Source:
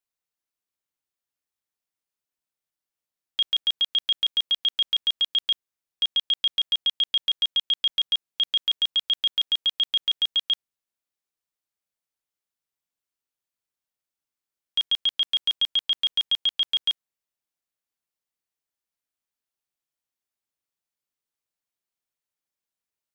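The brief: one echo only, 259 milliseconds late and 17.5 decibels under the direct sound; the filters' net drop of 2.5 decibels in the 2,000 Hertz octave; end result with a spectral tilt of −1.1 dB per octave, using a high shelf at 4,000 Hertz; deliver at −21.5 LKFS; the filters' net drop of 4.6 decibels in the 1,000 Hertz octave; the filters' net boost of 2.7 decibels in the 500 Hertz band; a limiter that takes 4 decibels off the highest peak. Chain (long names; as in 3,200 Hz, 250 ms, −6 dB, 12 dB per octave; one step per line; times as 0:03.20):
parametric band 500 Hz +5.5 dB
parametric band 1,000 Hz −7 dB
parametric band 2,000 Hz −4 dB
high-shelf EQ 4,000 Hz +5 dB
brickwall limiter −20.5 dBFS
single-tap delay 259 ms −17.5 dB
level +5.5 dB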